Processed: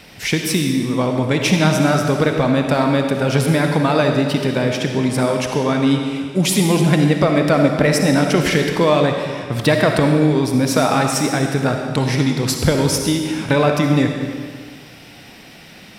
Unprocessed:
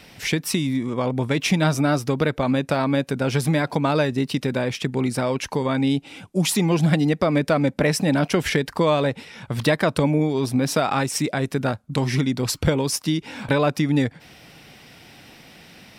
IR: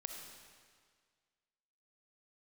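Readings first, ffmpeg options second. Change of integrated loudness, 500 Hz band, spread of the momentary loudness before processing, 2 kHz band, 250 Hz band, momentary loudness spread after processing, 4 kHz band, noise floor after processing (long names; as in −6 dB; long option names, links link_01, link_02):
+5.0 dB, +5.5 dB, 5 LU, +5.5 dB, +5.0 dB, 5 LU, +5.5 dB, −41 dBFS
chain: -filter_complex "[1:a]atrim=start_sample=2205[link_01];[0:a][link_01]afir=irnorm=-1:irlink=0,volume=7.5dB"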